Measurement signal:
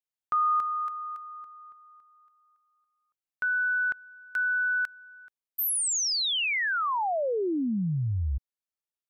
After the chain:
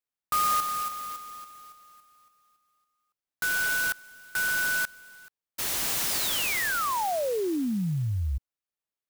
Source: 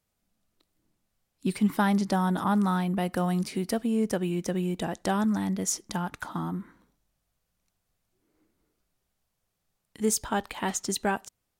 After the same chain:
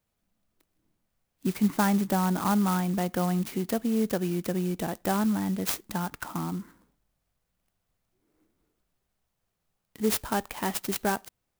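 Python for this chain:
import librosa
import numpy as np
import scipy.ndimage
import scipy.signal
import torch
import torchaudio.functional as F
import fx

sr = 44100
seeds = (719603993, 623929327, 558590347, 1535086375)

y = fx.clock_jitter(x, sr, seeds[0], jitter_ms=0.057)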